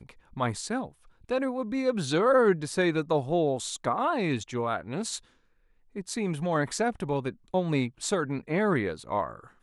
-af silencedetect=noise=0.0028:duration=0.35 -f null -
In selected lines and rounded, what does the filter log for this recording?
silence_start: 5.25
silence_end: 5.95 | silence_duration: 0.70